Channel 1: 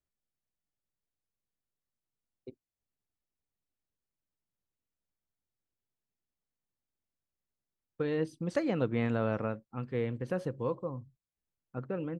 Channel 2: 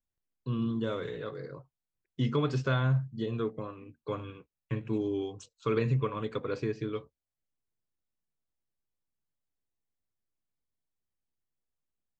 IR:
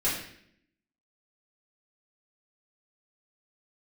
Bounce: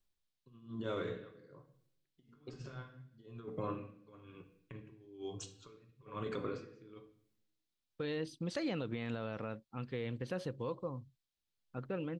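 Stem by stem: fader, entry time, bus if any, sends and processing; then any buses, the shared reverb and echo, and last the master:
−3.5 dB, 0.00 s, no send, parametric band 3,800 Hz +11.5 dB 1.3 octaves
−2.5 dB, 0.00 s, send −14 dB, compressor whose output falls as the input rises −34 dBFS, ratio −0.5; tremolo with a sine in dB 1.1 Hz, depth 25 dB; automatic ducking −10 dB, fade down 0.30 s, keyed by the first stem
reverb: on, RT60 0.65 s, pre-delay 3 ms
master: brickwall limiter −28.5 dBFS, peak gain reduction 9.5 dB

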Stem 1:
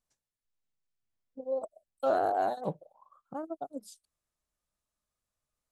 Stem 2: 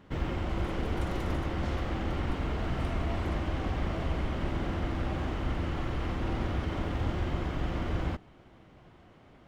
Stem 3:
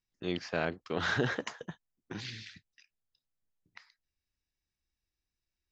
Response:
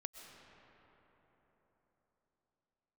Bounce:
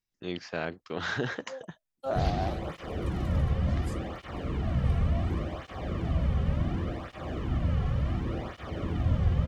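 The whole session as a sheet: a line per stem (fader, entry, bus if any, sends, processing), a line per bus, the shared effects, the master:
−9.5 dB, 0.00 s, no send, multiband upward and downward expander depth 100%
−1.5 dB, 2.05 s, no send, low-shelf EQ 270 Hz +11.5 dB; comb filter 1.7 ms, depth 32%; through-zero flanger with one copy inverted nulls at 0.69 Hz, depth 3.4 ms
−1.0 dB, 0.00 s, no send, no processing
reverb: not used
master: no processing

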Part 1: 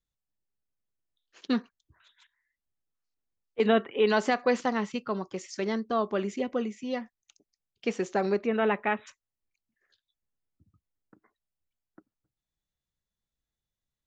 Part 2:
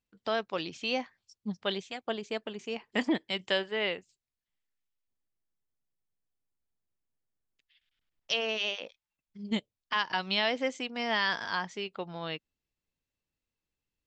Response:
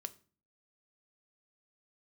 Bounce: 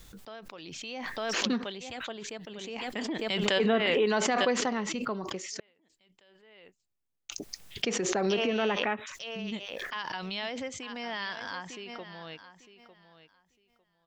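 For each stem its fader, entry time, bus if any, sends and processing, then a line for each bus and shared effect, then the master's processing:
−3.5 dB, 0.00 s, muted 0:05.60–0:07.29, no send, no echo send, no processing
0:01.40 −15 dB → 0:01.68 −7.5 dB, 0.00 s, no send, echo send −14 dB, downward expander −58 dBFS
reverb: not used
echo: repeating echo 902 ms, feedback 18%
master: background raised ahead of every attack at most 21 dB per second

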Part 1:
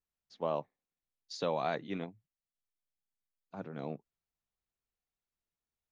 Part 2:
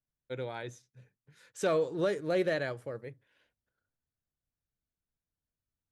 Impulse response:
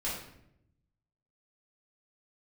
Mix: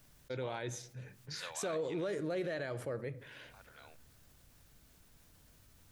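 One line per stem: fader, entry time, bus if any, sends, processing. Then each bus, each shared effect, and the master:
0.0 dB, 0.00 s, no send, Bessel high-pass filter 2,200 Hz, order 2
−5.0 dB, 0.00 s, send −19.5 dB, envelope flattener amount 50%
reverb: on, RT60 0.75 s, pre-delay 3 ms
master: brickwall limiter −29.5 dBFS, peak gain reduction 7 dB

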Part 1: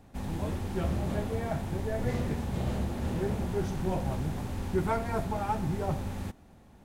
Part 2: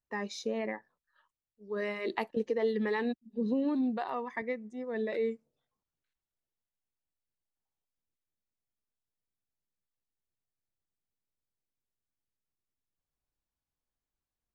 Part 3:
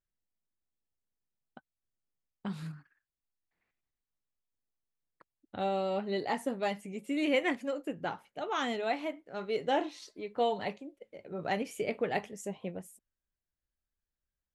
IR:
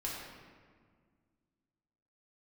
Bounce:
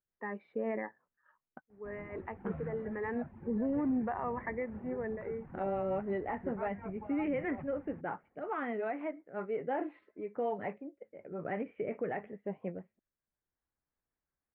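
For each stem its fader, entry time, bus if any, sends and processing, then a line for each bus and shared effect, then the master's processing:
−13.5 dB, 1.70 s, no bus, no send, reverb reduction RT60 0.71 s
−3.5 dB, 0.10 s, bus A, no send, automatic gain control gain up to 5 dB; automatic ducking −10 dB, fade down 0.25 s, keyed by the third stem
+1.5 dB, 0.00 s, bus A, no send, rotating-speaker cabinet horn 5.5 Hz
bus A: 0.0 dB, brickwall limiter −25.5 dBFS, peak gain reduction 8.5 dB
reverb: not used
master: Butterworth low-pass 2,100 Hz 36 dB per octave; low-shelf EQ 70 Hz −11 dB

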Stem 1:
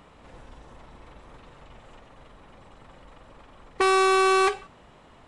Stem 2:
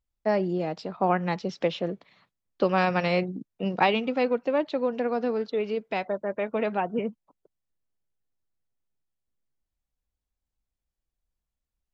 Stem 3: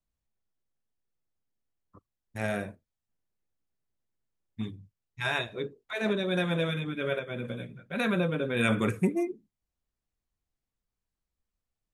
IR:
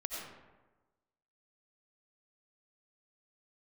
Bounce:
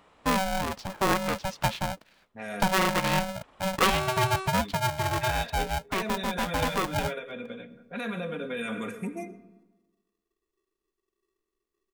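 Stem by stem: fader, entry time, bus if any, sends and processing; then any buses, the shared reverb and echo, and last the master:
−4.5 dB, 0.00 s, bus A, no send, downward compressor 2 to 1, threshold −24 dBFS, peak gain reduction 3.5 dB; automatic ducking −20 dB, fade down 0.25 s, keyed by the third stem
−1.0 dB, 0.00 s, no bus, no send, ring modulator with a square carrier 380 Hz
−3.0 dB, 0.00 s, bus A, send −15.5 dB, low-pass that shuts in the quiet parts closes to 320 Hz, open at −28.5 dBFS; comb filter 4.2 ms, depth 65%
bus A: 0.0 dB, low-shelf EQ 230 Hz −10 dB; brickwall limiter −27 dBFS, peak gain reduction 11.5 dB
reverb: on, RT60 1.2 s, pre-delay 50 ms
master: no processing

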